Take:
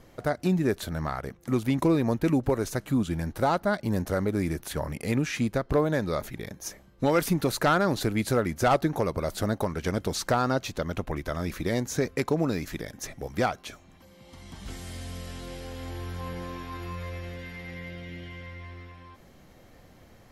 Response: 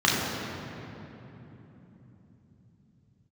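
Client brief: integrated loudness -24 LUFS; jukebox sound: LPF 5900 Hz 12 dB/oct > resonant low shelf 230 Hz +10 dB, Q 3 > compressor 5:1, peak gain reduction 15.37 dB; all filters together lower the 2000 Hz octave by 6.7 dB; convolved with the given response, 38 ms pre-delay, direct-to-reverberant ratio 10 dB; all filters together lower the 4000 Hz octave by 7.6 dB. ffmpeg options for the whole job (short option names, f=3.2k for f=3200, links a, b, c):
-filter_complex "[0:a]equalizer=f=2k:t=o:g=-8,equalizer=f=4k:t=o:g=-6,asplit=2[a][b];[1:a]atrim=start_sample=2205,adelay=38[c];[b][c]afir=irnorm=-1:irlink=0,volume=-28dB[d];[a][d]amix=inputs=2:normalize=0,lowpass=5.9k,lowshelf=f=230:t=q:w=3:g=10,acompressor=threshold=-23dB:ratio=5,volume=3.5dB"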